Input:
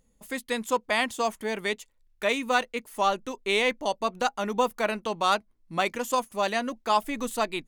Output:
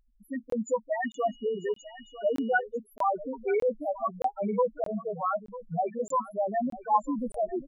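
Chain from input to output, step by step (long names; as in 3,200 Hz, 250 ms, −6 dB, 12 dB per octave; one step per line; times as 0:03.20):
in parallel at +2 dB: output level in coarse steps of 20 dB
on the sum: spectral peaks only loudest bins 2
single-tap delay 947 ms −16 dB
0:01.04–0:02.60: steady tone 2,900 Hz −56 dBFS
regular buffer underruns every 0.62 s, samples 1,024, zero, from 0:00.50
level +1.5 dB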